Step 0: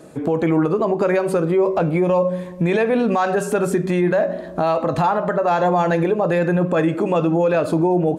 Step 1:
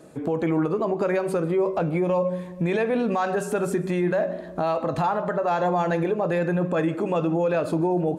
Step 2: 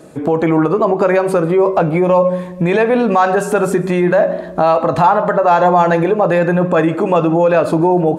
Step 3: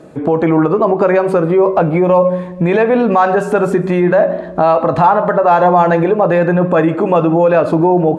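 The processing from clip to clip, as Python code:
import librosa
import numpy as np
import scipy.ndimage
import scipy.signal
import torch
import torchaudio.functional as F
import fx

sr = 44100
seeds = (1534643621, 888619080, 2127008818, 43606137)

y1 = fx.echo_feedback(x, sr, ms=151, feedback_pct=50, wet_db=-22.5)
y1 = y1 * librosa.db_to_amplitude(-5.5)
y2 = fx.dynamic_eq(y1, sr, hz=970.0, q=0.8, threshold_db=-38.0, ratio=4.0, max_db=5)
y2 = y2 * librosa.db_to_amplitude(8.5)
y3 = fx.lowpass(y2, sr, hz=2600.0, slope=6)
y3 = y3 * librosa.db_to_amplitude(1.5)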